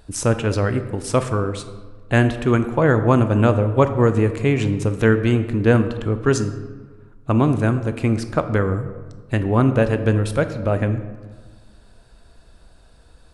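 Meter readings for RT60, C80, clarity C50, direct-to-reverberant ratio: 1.5 s, 12.5 dB, 11.0 dB, 9.5 dB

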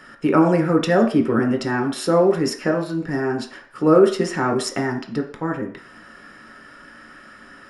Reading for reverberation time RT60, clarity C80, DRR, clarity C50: 0.50 s, 13.0 dB, 2.0 dB, 9.0 dB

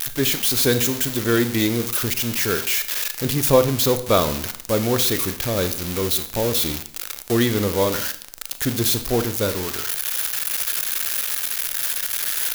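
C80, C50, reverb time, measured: 16.5 dB, 13.0 dB, 0.60 s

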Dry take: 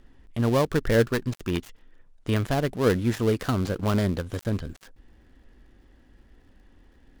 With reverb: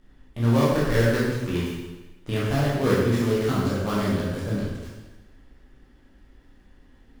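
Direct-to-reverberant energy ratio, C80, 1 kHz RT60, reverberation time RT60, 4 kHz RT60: -7.5 dB, 2.0 dB, 1.2 s, 1.2 s, 1.1 s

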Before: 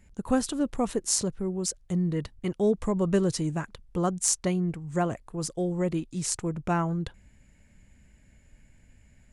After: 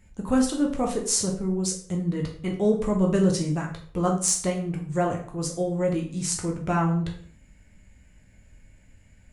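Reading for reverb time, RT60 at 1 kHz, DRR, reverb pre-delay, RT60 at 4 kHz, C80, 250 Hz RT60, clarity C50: 0.50 s, 0.50 s, 0.0 dB, 8 ms, 0.40 s, 12.0 dB, 0.55 s, 8.0 dB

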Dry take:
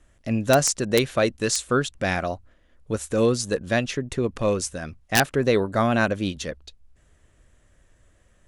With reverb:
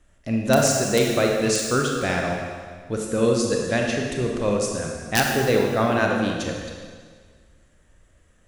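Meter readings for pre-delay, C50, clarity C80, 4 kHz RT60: 27 ms, 1.5 dB, 3.0 dB, 1.6 s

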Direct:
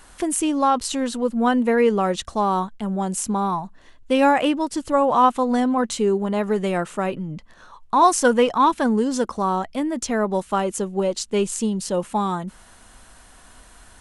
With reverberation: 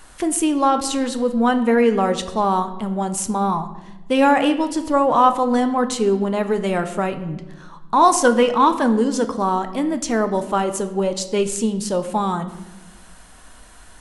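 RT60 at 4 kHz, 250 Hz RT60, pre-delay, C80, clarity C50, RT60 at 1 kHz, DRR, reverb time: 0.80 s, 1.5 s, 6 ms, 14.0 dB, 12.0 dB, 0.90 s, 8.5 dB, 1.1 s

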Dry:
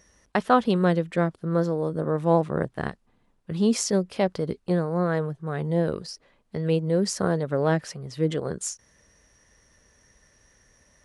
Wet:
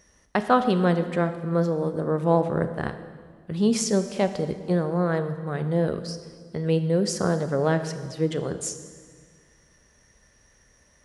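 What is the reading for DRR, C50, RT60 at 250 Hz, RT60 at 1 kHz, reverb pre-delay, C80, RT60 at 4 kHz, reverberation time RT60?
9.5 dB, 10.5 dB, 2.0 s, 1.6 s, 23 ms, 12.0 dB, 1.5 s, 1.7 s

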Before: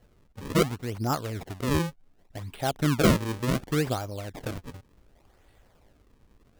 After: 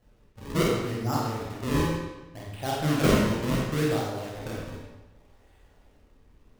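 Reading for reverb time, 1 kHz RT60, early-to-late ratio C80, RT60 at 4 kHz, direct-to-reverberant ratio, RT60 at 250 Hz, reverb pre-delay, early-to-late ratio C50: 1.1 s, 1.1 s, 1.5 dB, 0.95 s, -5.0 dB, 1.1 s, 29 ms, -1.0 dB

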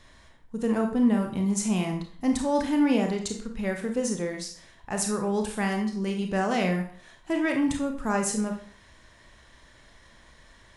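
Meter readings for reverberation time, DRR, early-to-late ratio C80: 0.45 s, 3.0 dB, 12.0 dB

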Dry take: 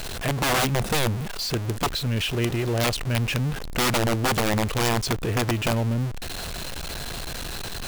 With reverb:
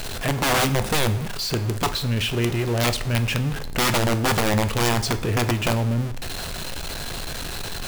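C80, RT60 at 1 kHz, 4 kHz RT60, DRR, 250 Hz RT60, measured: 18.0 dB, 0.60 s, 0.60 s, 9.5 dB, 0.60 s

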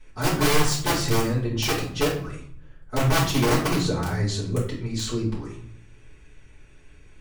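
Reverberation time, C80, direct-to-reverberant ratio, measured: 0.60 s, 10.0 dB, -8.0 dB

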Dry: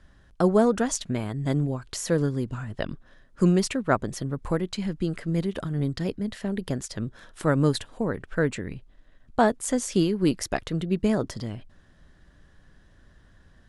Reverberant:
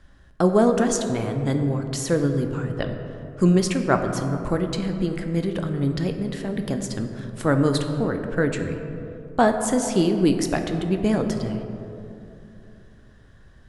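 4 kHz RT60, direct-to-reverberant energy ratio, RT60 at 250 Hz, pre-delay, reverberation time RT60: 1.1 s, 5.0 dB, 3.2 s, 3 ms, 2.9 s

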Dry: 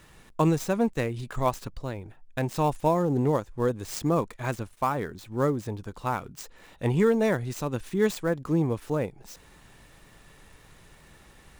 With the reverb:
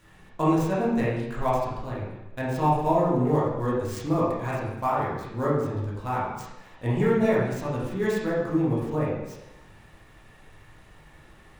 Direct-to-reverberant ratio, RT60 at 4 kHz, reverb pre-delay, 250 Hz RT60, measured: -7.5 dB, 0.90 s, 7 ms, 0.95 s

